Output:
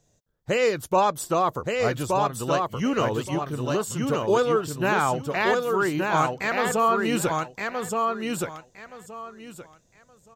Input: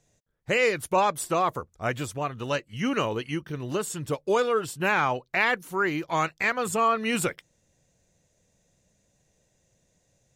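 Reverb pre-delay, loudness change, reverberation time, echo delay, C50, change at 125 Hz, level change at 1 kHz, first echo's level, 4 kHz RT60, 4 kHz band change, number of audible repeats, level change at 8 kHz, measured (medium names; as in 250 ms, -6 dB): no reverb, +2.0 dB, no reverb, 1172 ms, no reverb, +4.5 dB, +3.5 dB, -3.5 dB, no reverb, +1.0 dB, 3, +2.0 dB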